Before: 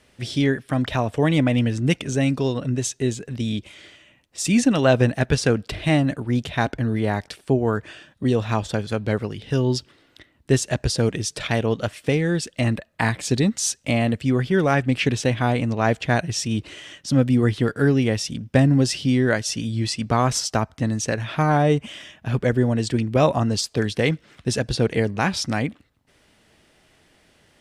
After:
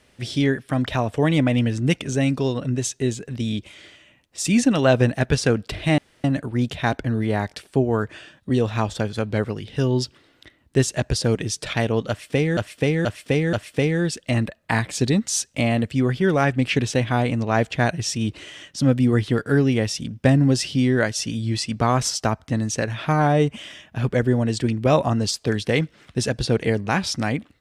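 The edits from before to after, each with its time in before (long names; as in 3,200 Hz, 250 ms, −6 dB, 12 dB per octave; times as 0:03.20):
0:05.98: splice in room tone 0.26 s
0:11.83–0:12.31: repeat, 4 plays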